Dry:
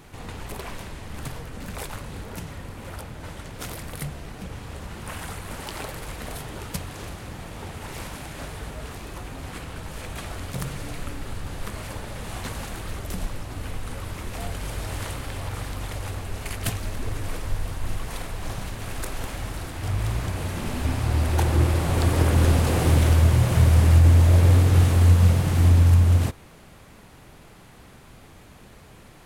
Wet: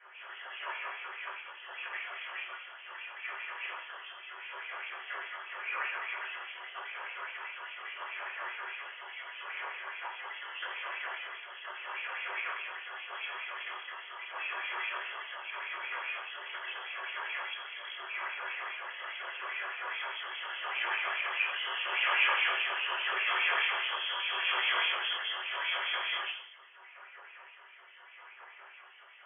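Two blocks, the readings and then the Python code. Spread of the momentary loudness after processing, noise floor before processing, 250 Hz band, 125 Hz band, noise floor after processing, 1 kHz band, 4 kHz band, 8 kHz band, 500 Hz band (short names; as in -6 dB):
16 LU, -48 dBFS, under -30 dB, under -40 dB, -54 dBFS, -3.0 dB, +2.5 dB, under -40 dB, -15.5 dB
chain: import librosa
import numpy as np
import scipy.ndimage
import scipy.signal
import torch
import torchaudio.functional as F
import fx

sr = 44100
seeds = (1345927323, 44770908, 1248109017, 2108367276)

y = fx.self_delay(x, sr, depth_ms=0.22)
y = fx.filter_lfo_bandpass(y, sr, shape='sine', hz=4.9, low_hz=870.0, high_hz=2300.0, q=4.5)
y = fx.rotary(y, sr, hz=0.8)
y = fx.room_shoebox(y, sr, seeds[0], volume_m3=32.0, walls='mixed', distance_m=2.1)
y = fx.freq_invert(y, sr, carrier_hz=3300)
y = fx.brickwall_highpass(y, sr, low_hz=320.0)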